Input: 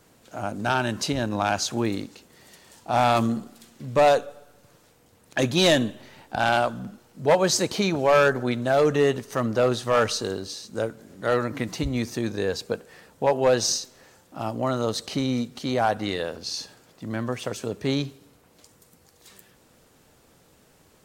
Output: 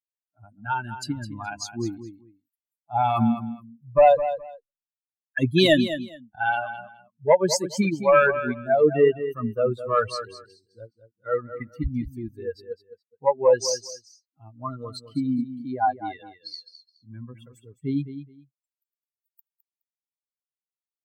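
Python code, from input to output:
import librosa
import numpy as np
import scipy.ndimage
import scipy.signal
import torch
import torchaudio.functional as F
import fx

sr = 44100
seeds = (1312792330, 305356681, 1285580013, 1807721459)

p1 = fx.bin_expand(x, sr, power=3.0)
p2 = fx.high_shelf(p1, sr, hz=3500.0, db=-7.0)
p3 = p2 + fx.echo_feedback(p2, sr, ms=210, feedback_pct=19, wet_db=-11.5, dry=0)
y = p3 * librosa.db_to_amplitude(7.0)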